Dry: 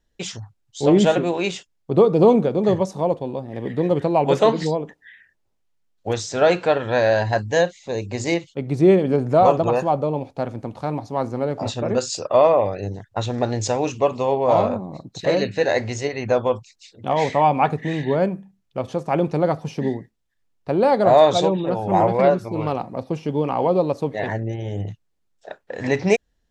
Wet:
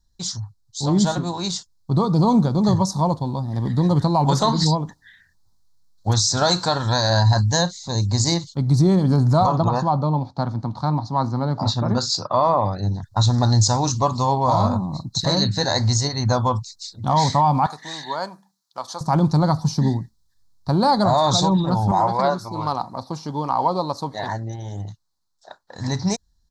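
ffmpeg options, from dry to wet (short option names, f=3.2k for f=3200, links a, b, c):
-filter_complex "[0:a]asettb=1/sr,asplit=3[a][b][c];[a]atrim=end=6.374[d];[b]atrim=start=6.37:end=7.1,asetpts=PTS-STARTPTS,afade=t=in:d=0.004:c=qsin,afade=t=out:st=0.726:d=0.004:c=qsin,bass=f=250:g=-2,treble=f=4k:g=8[e];[c]atrim=start=7.096[f];[d][e]acrossfade=d=0.004:c1=hsin:c2=qsin[g];[g][f]acrossfade=d=0.004:c1=qsin:c2=hsin,asettb=1/sr,asplit=3[h][i][j];[h]atrim=end=9.464[k];[i]atrim=start=9.46:end=13.03,asetpts=PTS-STARTPTS,afade=t=in:d=0.004:c=qsin,afade=t=out:st=3.566:d=0.004:c=qsin,highpass=120,lowpass=3.7k[l];[j]atrim=start=13.026[m];[k][l]acrossfade=d=0.004:c1=hsin:c2=qsin[n];[n][m]acrossfade=d=0.004:c1=qsin:c2=hsin,asettb=1/sr,asplit=3[o][p][q];[o]atrim=end=17.664[r];[p]atrim=start=17.66:end=19.01,asetpts=PTS-STARTPTS,afade=t=in:d=0.004:c=qsin,afade=t=out:st=1.346:d=0.004:c=qsin,highpass=710[s];[q]atrim=start=19.006[t];[r][s]acrossfade=d=0.004:c1=hsin:c2=qsin[u];[u][t]acrossfade=d=0.004:c1=qsin:c2=hsin,asettb=1/sr,asplit=3[v][w][x];[v]atrim=end=21.914[y];[w]atrim=start=21.91:end=25.76,asetpts=PTS-STARTPTS,afade=t=in:d=0.004:c=qsin,afade=t=out:st=3.846:d=0.004:c=qsin,bass=f=250:g=-14,treble=f=4k:g=-4[z];[x]atrim=start=25.756[aa];[y][z]acrossfade=d=0.004:c1=hsin:c2=qsin[ab];[ab][aa]acrossfade=d=0.004:c1=qsin:c2=hsin,firequalizer=gain_entry='entry(100,0);entry(450,-22);entry(950,-4);entry(2600,-27);entry(4100,3);entry(8500,-3)':delay=0.05:min_phase=1,dynaudnorm=f=430:g=9:m=6.5dB,alimiter=level_in=13.5dB:limit=-1dB:release=50:level=0:latency=1,volume=-7.5dB"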